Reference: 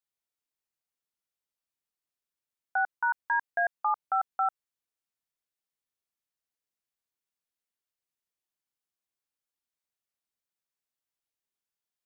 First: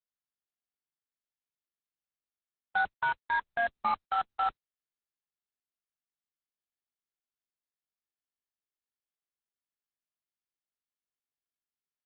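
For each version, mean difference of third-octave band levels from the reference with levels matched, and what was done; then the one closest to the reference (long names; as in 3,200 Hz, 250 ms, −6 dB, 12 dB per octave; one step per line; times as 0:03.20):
10.0 dB: bit reduction 5 bits
high-frequency loss of the air 140 metres
Opus 8 kbit/s 48,000 Hz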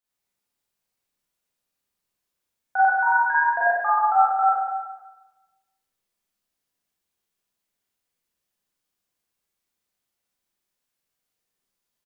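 3.0 dB: low-shelf EQ 450 Hz +4.5 dB
on a send: single-tap delay 194 ms −12 dB
on the sum: four-comb reverb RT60 1.1 s, combs from 31 ms, DRR −8.5 dB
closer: second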